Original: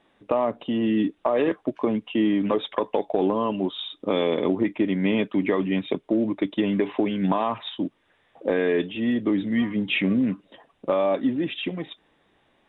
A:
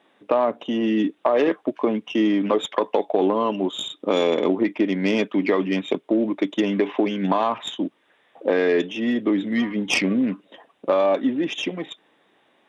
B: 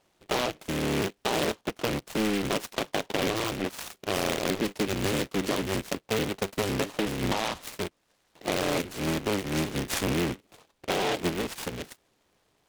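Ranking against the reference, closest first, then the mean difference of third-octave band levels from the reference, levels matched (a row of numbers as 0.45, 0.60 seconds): A, B; 3.0, 16.0 decibels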